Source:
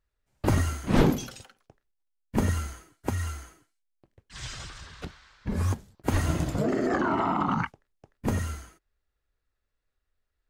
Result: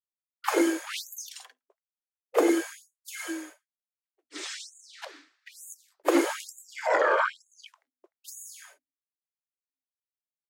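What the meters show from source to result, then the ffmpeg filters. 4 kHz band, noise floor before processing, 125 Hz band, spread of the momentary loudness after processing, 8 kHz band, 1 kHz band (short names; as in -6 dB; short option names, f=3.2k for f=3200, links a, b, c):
+2.5 dB, -81 dBFS, under -40 dB, 21 LU, +3.0 dB, 0.0 dB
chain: -af "afreqshift=250,agate=range=-33dB:threshold=-46dB:ratio=3:detection=peak,afftfilt=real='re*gte(b*sr/1024,210*pow(6600/210,0.5+0.5*sin(2*PI*1.1*pts/sr)))':imag='im*gte(b*sr/1024,210*pow(6600/210,0.5+0.5*sin(2*PI*1.1*pts/sr)))':win_size=1024:overlap=0.75,volume=3dB"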